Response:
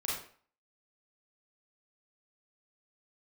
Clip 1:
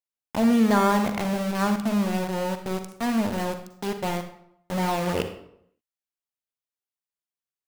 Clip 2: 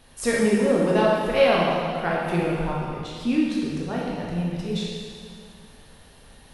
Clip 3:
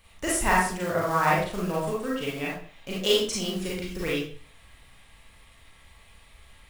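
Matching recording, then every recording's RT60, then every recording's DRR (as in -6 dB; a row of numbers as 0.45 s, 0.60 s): 3; 0.70 s, 2.2 s, 0.45 s; 7.0 dB, -5.0 dB, -6.0 dB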